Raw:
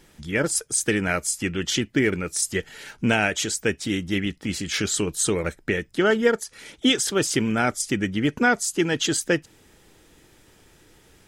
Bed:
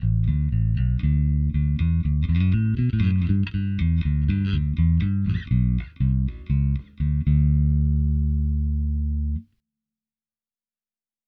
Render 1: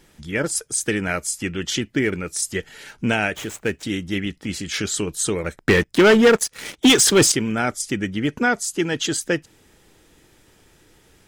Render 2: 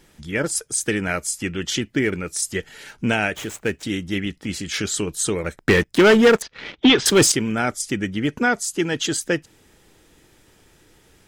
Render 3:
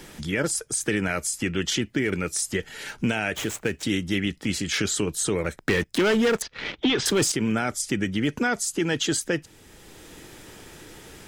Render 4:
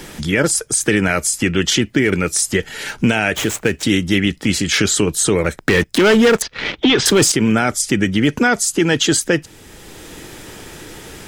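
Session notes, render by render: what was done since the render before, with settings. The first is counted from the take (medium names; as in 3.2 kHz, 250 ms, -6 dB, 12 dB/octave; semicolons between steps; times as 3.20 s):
3.35–3.83 s: median filter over 9 samples; 5.56–7.32 s: waveshaping leveller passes 3
6.42–7.06 s: low-pass 4 kHz 24 dB/octave
peak limiter -15 dBFS, peak gain reduction 9.5 dB; three bands compressed up and down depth 40%
trim +9.5 dB; peak limiter -2 dBFS, peak gain reduction 2.5 dB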